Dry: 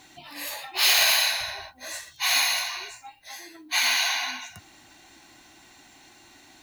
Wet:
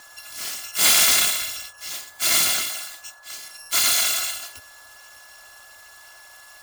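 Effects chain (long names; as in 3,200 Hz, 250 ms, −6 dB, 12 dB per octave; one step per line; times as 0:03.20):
samples in bit-reversed order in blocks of 256 samples
noise in a band 550–1,400 Hz −58 dBFS
parametric band 4,400 Hz +7 dB 2.7 octaves
steady tone 1,700 Hz −48 dBFS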